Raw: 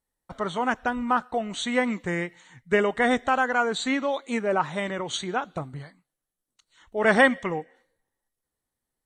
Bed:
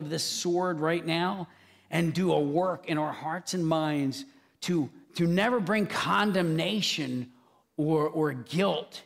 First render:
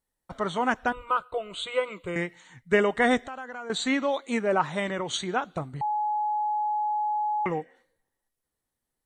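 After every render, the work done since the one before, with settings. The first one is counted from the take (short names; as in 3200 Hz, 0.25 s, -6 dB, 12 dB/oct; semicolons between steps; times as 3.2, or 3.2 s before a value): 0.92–2.16 fixed phaser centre 1200 Hz, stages 8; 3.21–3.7 compressor 2.5:1, threshold -42 dBFS; 5.81–7.46 bleep 844 Hz -24 dBFS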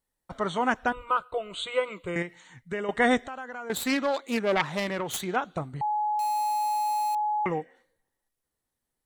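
2.22–2.89 compressor 2.5:1, threshold -33 dBFS; 3.67–5.36 self-modulated delay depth 0.26 ms; 6.19–7.15 companded quantiser 4-bit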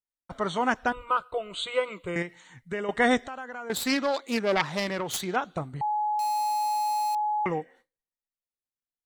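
gate with hold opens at -51 dBFS; dynamic EQ 5000 Hz, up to +7 dB, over -55 dBFS, Q 2.8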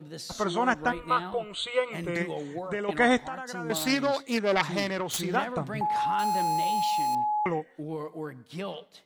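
add bed -9.5 dB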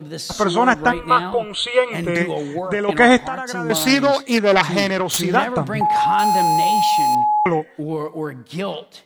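gain +10.5 dB; limiter -1 dBFS, peak gain reduction 1.5 dB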